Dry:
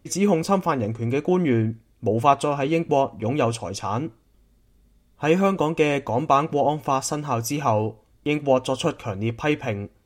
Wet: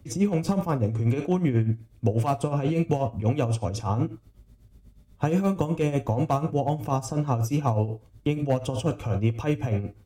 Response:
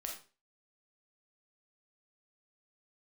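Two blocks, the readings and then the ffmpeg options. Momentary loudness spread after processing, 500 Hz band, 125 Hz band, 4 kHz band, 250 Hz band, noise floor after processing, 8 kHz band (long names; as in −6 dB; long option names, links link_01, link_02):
4 LU, −6.0 dB, +3.5 dB, −8.5 dB, −2.0 dB, −57 dBFS, −8.0 dB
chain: -filter_complex "[0:a]asoftclip=type=hard:threshold=-10.5dB,asplit=2[link_01][link_02];[1:a]atrim=start_sample=2205,atrim=end_sample=4410[link_03];[link_02][link_03]afir=irnorm=-1:irlink=0,volume=-2dB[link_04];[link_01][link_04]amix=inputs=2:normalize=0,tremolo=f=8.2:d=0.74,equalizer=frequency=94:width_type=o:width=1.7:gain=12.5,acrossover=split=160|1000|6800[link_05][link_06][link_07][link_08];[link_05]acompressor=threshold=-26dB:ratio=4[link_09];[link_06]acompressor=threshold=-23dB:ratio=4[link_10];[link_07]acompressor=threshold=-40dB:ratio=4[link_11];[link_08]acompressor=threshold=-44dB:ratio=4[link_12];[link_09][link_10][link_11][link_12]amix=inputs=4:normalize=0,volume=-1dB"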